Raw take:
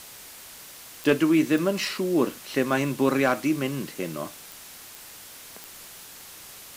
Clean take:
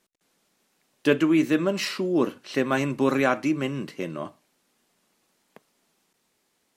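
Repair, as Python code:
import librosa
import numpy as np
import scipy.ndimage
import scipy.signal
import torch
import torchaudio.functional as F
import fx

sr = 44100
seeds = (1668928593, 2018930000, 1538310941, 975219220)

y = fx.fix_declip(x, sr, threshold_db=-10.5)
y = fx.fix_declick_ar(y, sr, threshold=10.0)
y = fx.noise_reduce(y, sr, print_start_s=5.04, print_end_s=5.54, reduce_db=27.0)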